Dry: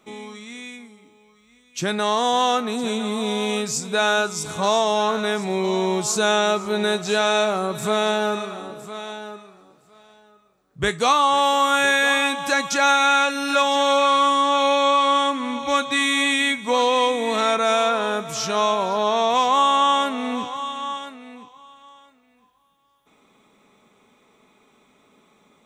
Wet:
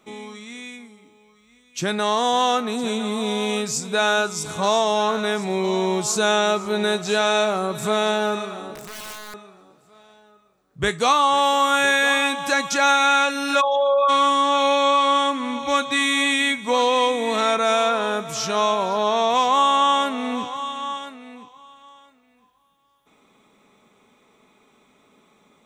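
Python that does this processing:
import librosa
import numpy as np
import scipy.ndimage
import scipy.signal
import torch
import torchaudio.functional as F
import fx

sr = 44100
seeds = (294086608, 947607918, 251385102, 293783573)

y = fx.overflow_wrap(x, sr, gain_db=29.0, at=(8.74, 9.34))
y = fx.envelope_sharpen(y, sr, power=3.0, at=(13.6, 14.08), fade=0.02)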